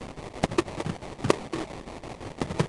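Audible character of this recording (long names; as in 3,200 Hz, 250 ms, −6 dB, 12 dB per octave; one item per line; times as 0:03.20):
a quantiser's noise floor 6 bits, dither triangular
chopped level 5.9 Hz, depth 65%, duty 70%
aliases and images of a low sample rate 1,500 Hz, jitter 20%
Nellymoser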